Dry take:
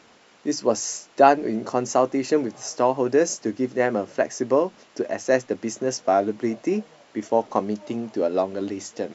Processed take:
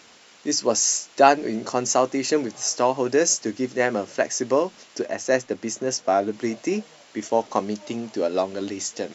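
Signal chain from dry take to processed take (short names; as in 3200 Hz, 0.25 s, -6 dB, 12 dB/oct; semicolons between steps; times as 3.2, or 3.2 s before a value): high shelf 2200 Hz +11 dB, from 5.05 s +6 dB, from 6.33 s +11 dB; gain -1.5 dB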